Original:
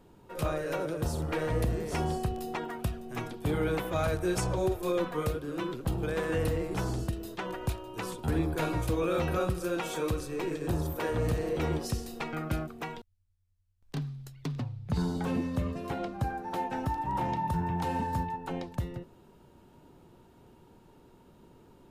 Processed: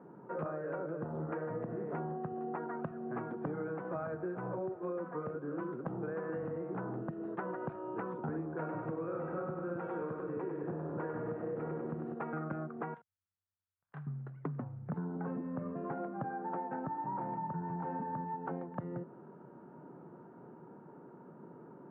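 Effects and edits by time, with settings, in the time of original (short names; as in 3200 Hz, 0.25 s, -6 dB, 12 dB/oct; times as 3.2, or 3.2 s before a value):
8.59–12.14 split-band echo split 360 Hz, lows 0.26 s, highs 98 ms, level -4.5 dB
12.94–14.07 passive tone stack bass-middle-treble 10-0-10
whole clip: elliptic band-pass 150–1500 Hz, stop band 50 dB; compressor 10:1, threshold -41 dBFS; gain +5.5 dB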